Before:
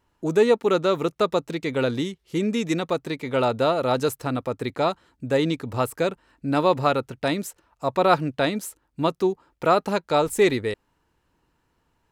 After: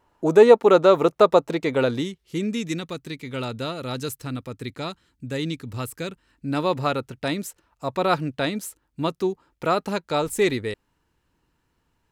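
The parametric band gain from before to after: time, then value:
parametric band 720 Hz 2 octaves
0:01.59 +8.5 dB
0:02.06 −2 dB
0:02.93 −13 dB
0:06.08 −13 dB
0:06.72 −4 dB

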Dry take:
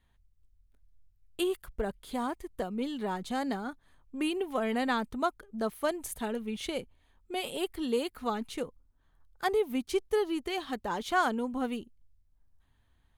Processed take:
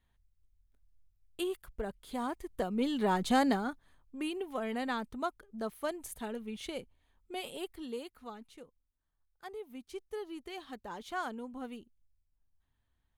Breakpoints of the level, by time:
0:01.98 −5 dB
0:03.34 +6.5 dB
0:04.15 −5.5 dB
0:07.41 −5.5 dB
0:08.64 −17 dB
0:09.44 −17 dB
0:10.55 −10 dB

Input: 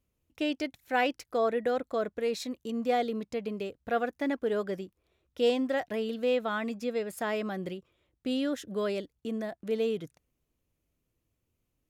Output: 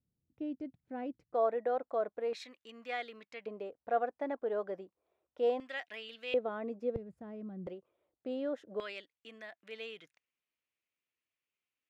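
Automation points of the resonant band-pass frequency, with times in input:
resonant band-pass, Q 1.5
160 Hz
from 0:01.34 750 Hz
from 0:02.33 2,000 Hz
from 0:03.46 730 Hz
from 0:05.60 2,600 Hz
from 0:06.34 460 Hz
from 0:06.96 110 Hz
from 0:07.67 640 Hz
from 0:08.80 2,300 Hz

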